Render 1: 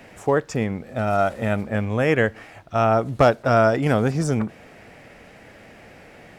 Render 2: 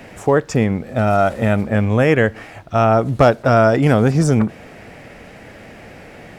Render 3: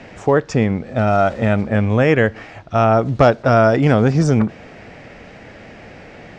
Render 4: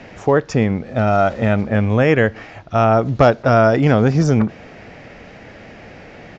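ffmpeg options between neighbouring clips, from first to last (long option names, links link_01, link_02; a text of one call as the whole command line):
ffmpeg -i in.wav -filter_complex "[0:a]lowshelf=frequency=410:gain=3,asplit=2[link_01][link_02];[link_02]alimiter=limit=-12dB:level=0:latency=1:release=108,volume=1.5dB[link_03];[link_01][link_03]amix=inputs=2:normalize=0,volume=-1dB" out.wav
ffmpeg -i in.wav -af "lowpass=frequency=6600:width=0.5412,lowpass=frequency=6600:width=1.3066" out.wav
ffmpeg -i in.wav -af "aresample=16000,aresample=44100" out.wav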